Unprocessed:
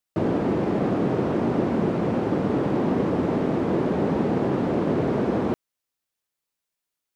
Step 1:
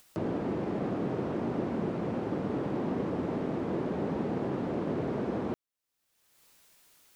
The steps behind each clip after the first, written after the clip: upward compressor, threshold -28 dBFS; trim -9 dB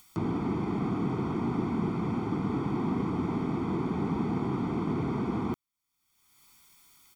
comb 0.9 ms, depth 90%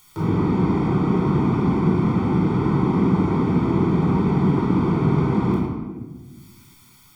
simulated room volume 1000 m³, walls mixed, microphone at 4.5 m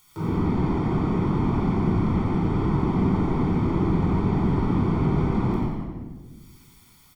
frequency-shifting echo 89 ms, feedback 55%, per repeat -84 Hz, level -4.5 dB; trim -5 dB

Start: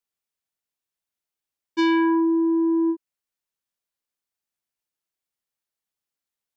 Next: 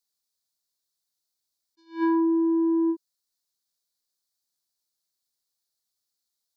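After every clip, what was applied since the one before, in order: resonant high shelf 3.4 kHz +7.5 dB, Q 3; attacks held to a fixed rise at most 220 dB/s; trim -2 dB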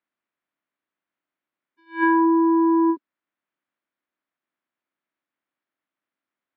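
spectral peaks clipped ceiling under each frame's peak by 16 dB; cabinet simulation 220–2400 Hz, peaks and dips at 290 Hz +5 dB, 450 Hz -8 dB, 810 Hz -5 dB; trim +5.5 dB

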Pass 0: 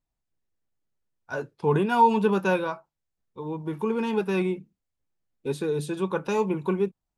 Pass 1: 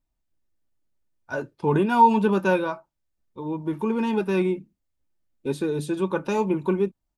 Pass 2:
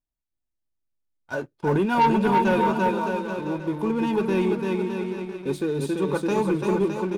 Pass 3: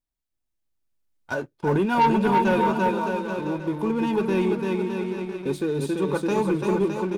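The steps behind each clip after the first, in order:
bass shelf 420 Hz +4.5 dB; comb 3.3 ms, depth 31%
on a send: bouncing-ball echo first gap 340 ms, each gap 0.8×, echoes 5; on the sum: waveshaping leveller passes 2; trim -7.5 dB
recorder AGC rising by 5.3 dB/s

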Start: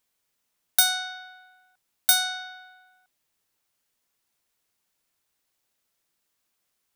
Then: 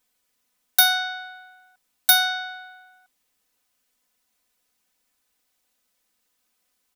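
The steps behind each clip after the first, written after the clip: comb 4 ms, depth 97%; trim +1 dB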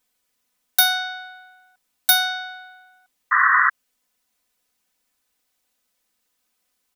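painted sound noise, 3.31–3.70 s, 1–2 kHz -16 dBFS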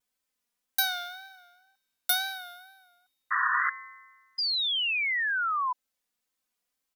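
wow and flutter 79 cents; feedback comb 120 Hz, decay 1.4 s, harmonics odd, mix 70%; painted sound fall, 4.38–5.73 s, 980–5000 Hz -28 dBFS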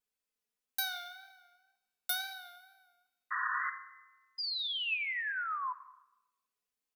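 small resonant body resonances 420/2600 Hz, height 8 dB; on a send at -9 dB: reverberation RT60 1.0 s, pre-delay 5 ms; on the sum: trim -8.5 dB

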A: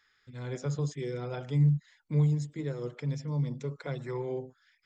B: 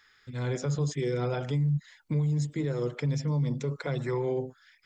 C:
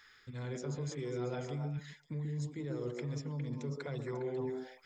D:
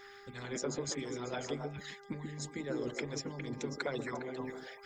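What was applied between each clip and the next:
peak limiter -29 dBFS, peak gain reduction 12 dB; trim +7.5 dB
reverse; compression 5:1, threshold -39 dBFS, peak gain reduction 13.5 dB; reverse; repeats whose band climbs or falls 136 ms, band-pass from 320 Hz, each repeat 1.4 oct, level 0 dB; trim +1 dB
harmonic-percussive split harmonic -18 dB; mains buzz 400 Hz, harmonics 5, -66 dBFS -5 dB/octave; trim +10 dB

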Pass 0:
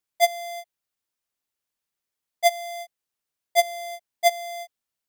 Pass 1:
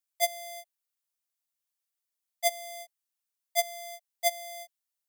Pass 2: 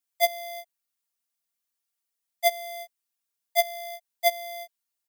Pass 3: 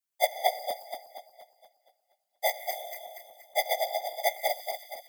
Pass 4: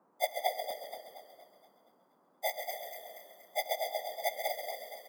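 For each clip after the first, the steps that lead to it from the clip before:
elliptic high-pass 590 Hz; treble shelf 4.4 kHz +10.5 dB; trim -9 dB
comb 4.3 ms, depth 93%
backward echo that repeats 118 ms, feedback 69%, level -2 dB; whisper effect; trim -5 dB
frequency-shifting echo 134 ms, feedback 50%, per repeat -35 Hz, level -8 dB; band noise 180–1100 Hz -63 dBFS; trim -6.5 dB

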